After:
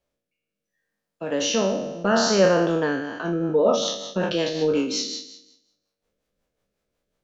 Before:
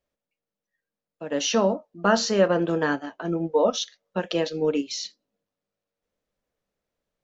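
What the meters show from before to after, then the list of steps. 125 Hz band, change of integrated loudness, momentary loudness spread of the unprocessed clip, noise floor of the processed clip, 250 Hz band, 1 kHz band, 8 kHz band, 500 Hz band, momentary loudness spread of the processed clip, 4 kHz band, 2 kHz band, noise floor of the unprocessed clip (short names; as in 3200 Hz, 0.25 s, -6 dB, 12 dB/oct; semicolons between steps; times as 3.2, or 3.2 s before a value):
+2.5 dB, +2.0 dB, 10 LU, -84 dBFS, +2.0 dB, +0.5 dB, n/a, +2.5 dB, 11 LU, +3.0 dB, +1.5 dB, under -85 dBFS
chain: spectral trails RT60 0.88 s; notch 1900 Hz, Q 25; in parallel at +1 dB: compressor, threshold -27 dBFS, peak gain reduction 14 dB; on the sum: rotary speaker horn 0.7 Hz, later 5.5 Hz, at 2.76; gain -1.5 dB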